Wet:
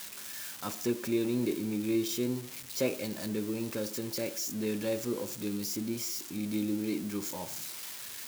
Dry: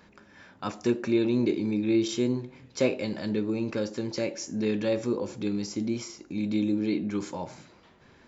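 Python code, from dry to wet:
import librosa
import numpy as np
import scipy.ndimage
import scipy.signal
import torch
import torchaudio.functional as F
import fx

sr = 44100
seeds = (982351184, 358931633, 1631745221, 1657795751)

y = x + 0.5 * 10.0 ** (-24.5 / 20.0) * np.diff(np.sign(x), prepend=np.sign(x[:1]))
y = y * librosa.db_to_amplitude(-5.5)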